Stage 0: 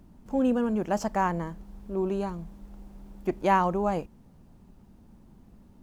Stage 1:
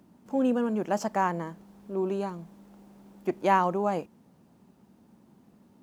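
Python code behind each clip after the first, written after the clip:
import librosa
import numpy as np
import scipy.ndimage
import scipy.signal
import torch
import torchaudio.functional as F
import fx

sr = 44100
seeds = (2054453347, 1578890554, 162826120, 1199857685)

y = scipy.signal.sosfilt(scipy.signal.butter(2, 180.0, 'highpass', fs=sr, output='sos'), x)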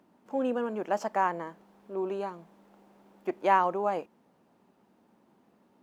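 y = fx.bass_treble(x, sr, bass_db=-14, treble_db=-8)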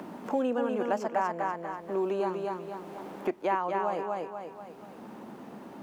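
y = fx.rider(x, sr, range_db=10, speed_s=0.5)
y = fx.echo_feedback(y, sr, ms=242, feedback_pct=28, wet_db=-5)
y = fx.band_squash(y, sr, depth_pct=70)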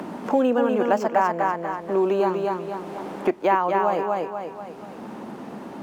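y = np.interp(np.arange(len(x)), np.arange(len(x))[::2], x[::2])
y = y * librosa.db_to_amplitude(8.5)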